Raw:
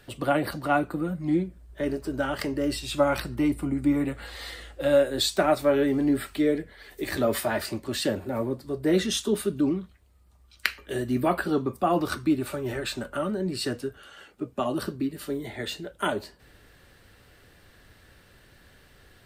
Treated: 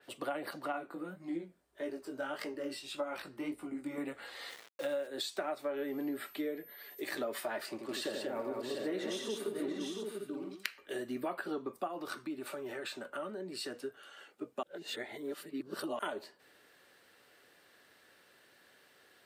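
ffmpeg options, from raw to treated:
-filter_complex "[0:a]asettb=1/sr,asplit=3[a][b][c];[a]atrim=end=0.724[d];[b]atrim=start=0.72:end=3.98,asetpts=PTS-STARTPTS,afade=t=in:d=0.004:c=qsin,afade=t=out:st=3.256:d=0.004:c=qsin,flanger=delay=17:depth=5.8:speed=1.7[e];[c]atrim=start=3.976[f];[d][e]acrossfade=d=0.004:c1=hsin:c2=qsin[g];[g][f]acrossfade=d=0.004:c1=qsin:c2=hsin,asplit=3[h][i][j];[h]afade=t=out:st=4.49:d=0.02[k];[i]aeval=exprs='val(0)*gte(abs(val(0)),0.0141)':c=same,afade=t=in:st=4.49:d=0.02,afade=t=out:st=5.06:d=0.02[l];[j]afade=t=in:st=5.06:d=0.02[m];[k][l][m]amix=inputs=3:normalize=0,asettb=1/sr,asplit=3[n][o][p];[n]atrim=end=5.774[q];[o]atrim=start=5.77:end=7,asetpts=PTS-STARTPTS,afade=t=in:d=0.004:c=qsin,afade=t=out:st=1.226:d=0.004:c=qsin,aeval=exprs='val(0)+0.00562*sin(2*PI*13000*n/s)':c=same[r];[p]atrim=start=6.996[s];[q][r]acrossfade=d=0.004:c1=hsin:c2=qsin[t];[t][s]acrossfade=d=0.004:c1=qsin:c2=hsin,asettb=1/sr,asplit=3[u][v][w];[u]atrim=end=7.704[x];[v]atrim=start=7.7:end=10.69,asetpts=PTS-STARTPTS,afade=t=in:d=0.004:c=qsin,afade=t=out:st=2.986:d=0.004:c=qsin,aecho=1:1:85|188|693|746|833:0.501|0.631|0.376|0.335|0.188,atrim=end_sample=131859[y];[w]atrim=start=10.686[z];[x][y]acrossfade=d=0.004:c1=hsin:c2=qsin[aa];[aa][z]acrossfade=d=0.004:c1=qsin:c2=hsin,asettb=1/sr,asplit=3[ab][ac][ad];[ab]atrim=end=11.874[ae];[ac]atrim=start=11.87:end=13.82,asetpts=PTS-STARTPTS,afade=t=in:d=0.004:c=qsin,afade=t=out:st=1.946:d=0.004:c=qsin,acompressor=threshold=-31dB:ratio=2:attack=3.2:release=140:knee=1:detection=peak[af];[ad]atrim=start=13.816[ag];[ae][af]acrossfade=d=0.004:c1=hsin:c2=qsin[ah];[ah][ag]acrossfade=d=0.004:c1=qsin:c2=hsin,asplit=3[ai][aj][ak];[ai]atrim=end=14.632[al];[aj]atrim=start=14.628:end=15.992,asetpts=PTS-STARTPTS,areverse[am];[ak]atrim=start=15.988[an];[al][am]acrossfade=d=0.004:c1=hsin:c2=hsin[ao];[ao][an]acrossfade=d=0.004:c1=hsin:c2=hsin,highpass=340,acompressor=threshold=-28dB:ratio=6,adynamicequalizer=threshold=0.00282:dfrequency=3900:dqfactor=0.7:tfrequency=3900:tqfactor=0.7:attack=5:release=100:ratio=0.375:range=3:mode=cutabove:tftype=highshelf,volume=-5.5dB"

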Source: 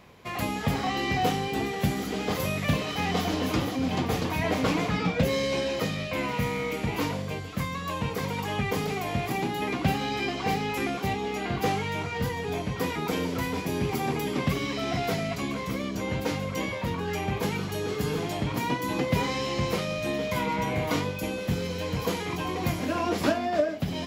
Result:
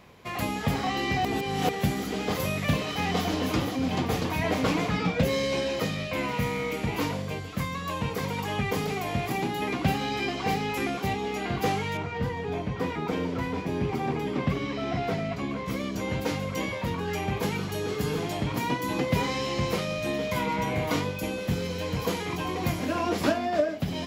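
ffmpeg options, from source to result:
-filter_complex "[0:a]asettb=1/sr,asplit=3[a][b][c];[a]atrim=end=11.974[d];[b]atrim=start=11.97:end=15.68,asetpts=PTS-STARTPTS,afade=t=in:d=0.004:c=qsin,afade=t=out:st=3.706:d=0.004:c=qsin,aemphasis=mode=reproduction:type=75kf[e];[c]atrim=start=15.676[f];[d][e]acrossfade=d=0.004:c1=hsin:c2=qsin[g];[g][f]acrossfade=d=0.004:c1=qsin:c2=hsin,asplit=3[h][i][j];[h]atrim=end=1.252[k];[i]atrim=start=1.248:end=1.692,asetpts=PTS-STARTPTS,areverse[l];[j]atrim=start=1.688[m];[k][l]acrossfade=d=0.004:c1=hsin:c2=hsin[n];[n][m]acrossfade=d=0.004:c1=hsin:c2=hsin"

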